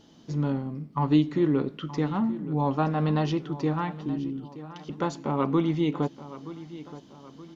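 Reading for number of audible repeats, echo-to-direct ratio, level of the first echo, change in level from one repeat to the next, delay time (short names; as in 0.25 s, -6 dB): 3, -14.5 dB, -15.5 dB, -7.0 dB, 0.924 s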